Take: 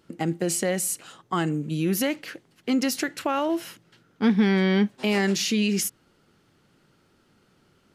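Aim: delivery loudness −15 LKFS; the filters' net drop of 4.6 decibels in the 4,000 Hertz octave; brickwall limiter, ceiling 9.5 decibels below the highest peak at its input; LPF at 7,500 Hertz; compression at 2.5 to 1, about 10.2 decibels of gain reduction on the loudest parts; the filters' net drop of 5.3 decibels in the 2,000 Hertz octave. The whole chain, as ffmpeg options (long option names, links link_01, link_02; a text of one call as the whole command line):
ffmpeg -i in.wav -af "lowpass=7500,equalizer=frequency=2000:width_type=o:gain=-5.5,equalizer=frequency=4000:width_type=o:gain=-4,acompressor=threshold=-32dB:ratio=2.5,volume=22dB,alimiter=limit=-6dB:level=0:latency=1" out.wav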